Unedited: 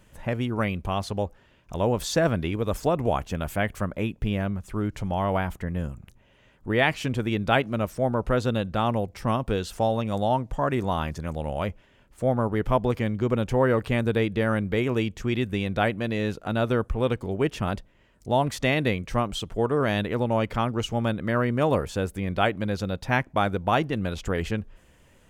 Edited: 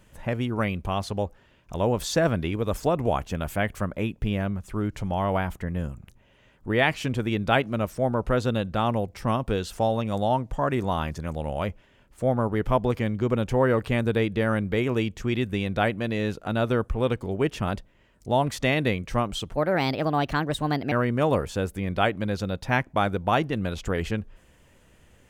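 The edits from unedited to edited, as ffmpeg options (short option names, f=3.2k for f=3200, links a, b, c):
-filter_complex "[0:a]asplit=3[a][b][c];[a]atrim=end=19.544[d];[b]atrim=start=19.54:end=21.32,asetpts=PTS-STARTPTS,asetrate=56889,aresample=44100,atrim=end_sample=60851,asetpts=PTS-STARTPTS[e];[c]atrim=start=21.316[f];[d][e]acrossfade=d=0.004:c1=hsin:c2=hsin[g];[g][f]acrossfade=d=0.004:c1=hsin:c2=hsin"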